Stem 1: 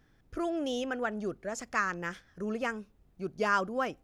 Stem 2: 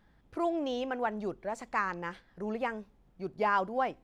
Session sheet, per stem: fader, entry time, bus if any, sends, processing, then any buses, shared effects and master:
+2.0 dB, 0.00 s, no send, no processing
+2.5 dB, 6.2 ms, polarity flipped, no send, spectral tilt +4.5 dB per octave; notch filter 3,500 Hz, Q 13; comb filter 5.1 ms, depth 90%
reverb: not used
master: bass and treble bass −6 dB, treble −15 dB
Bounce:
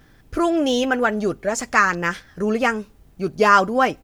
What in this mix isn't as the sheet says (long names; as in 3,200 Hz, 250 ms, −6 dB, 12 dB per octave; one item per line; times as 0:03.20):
stem 1 +2.0 dB → +13.0 dB
master: missing bass and treble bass −6 dB, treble −15 dB